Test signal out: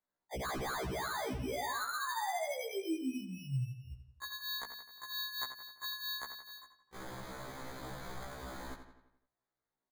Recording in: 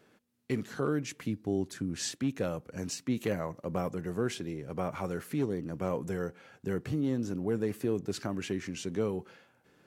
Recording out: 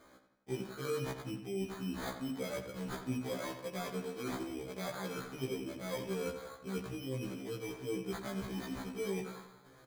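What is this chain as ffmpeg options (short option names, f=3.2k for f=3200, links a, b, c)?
-filter_complex "[0:a]equalizer=f=1.4k:t=o:w=3:g=3,bandreject=f=50:t=h:w=6,bandreject=f=100:t=h:w=6,bandreject=f=150:t=h:w=6,bandreject=f=200:t=h:w=6,bandreject=f=250:t=h:w=6,bandreject=f=300:t=h:w=6,areverse,acompressor=threshold=-39dB:ratio=6,areverse,flanger=delay=3.1:depth=9.1:regen=-6:speed=0.23:shape=triangular,acrusher=samples=16:mix=1:aa=0.000001,asplit=2[a][b];[b]adelay=86,lowpass=f=4.9k:p=1,volume=-9dB,asplit=2[c][d];[d]adelay=86,lowpass=f=4.9k:p=1,volume=0.53,asplit=2[e][f];[f]adelay=86,lowpass=f=4.9k:p=1,volume=0.53,asplit=2[g][h];[h]adelay=86,lowpass=f=4.9k:p=1,volume=0.53,asplit=2[i][j];[j]adelay=86,lowpass=f=4.9k:p=1,volume=0.53,asplit=2[k][l];[l]adelay=86,lowpass=f=4.9k:p=1,volume=0.53[m];[c][e][g][i][k][m]amix=inputs=6:normalize=0[n];[a][n]amix=inputs=2:normalize=0,afftfilt=real='re*1.73*eq(mod(b,3),0)':imag='im*1.73*eq(mod(b,3),0)':win_size=2048:overlap=0.75,volume=7.5dB"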